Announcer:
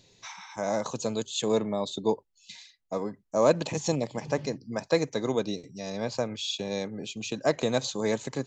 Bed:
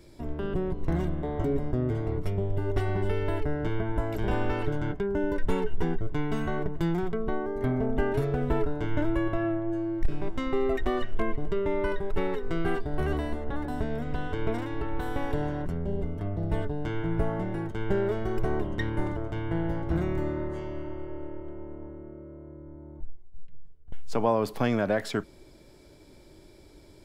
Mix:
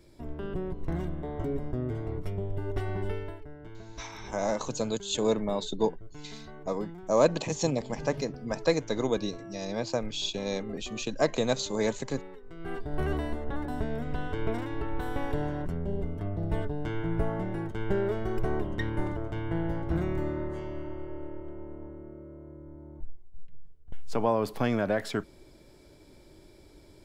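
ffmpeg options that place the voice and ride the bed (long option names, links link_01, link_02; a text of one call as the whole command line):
ffmpeg -i stem1.wav -i stem2.wav -filter_complex "[0:a]adelay=3750,volume=-0.5dB[link_01];[1:a]volume=10.5dB,afade=type=out:start_time=3.1:duration=0.28:silence=0.251189,afade=type=in:start_time=12.57:duration=0.42:silence=0.177828[link_02];[link_01][link_02]amix=inputs=2:normalize=0" out.wav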